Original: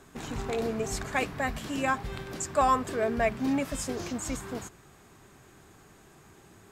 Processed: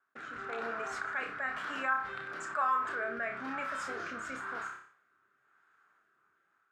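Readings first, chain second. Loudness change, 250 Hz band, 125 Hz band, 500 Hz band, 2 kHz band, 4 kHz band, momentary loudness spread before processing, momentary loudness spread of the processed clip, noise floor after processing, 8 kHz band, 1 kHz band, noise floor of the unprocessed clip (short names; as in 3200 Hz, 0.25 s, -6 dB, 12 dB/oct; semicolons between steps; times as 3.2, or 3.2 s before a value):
-5.5 dB, -15.5 dB, -20.5 dB, -11.0 dB, +1.0 dB, -9.0 dB, 12 LU, 9 LU, -75 dBFS, -15.5 dB, -4.0 dB, -56 dBFS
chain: gate -47 dBFS, range -44 dB; AGC gain up to 8.5 dB; rotary speaker horn 1 Hz; band-pass 1400 Hz, Q 6.1; flutter echo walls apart 5.2 m, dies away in 0.27 s; fast leveller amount 50%; gain -4 dB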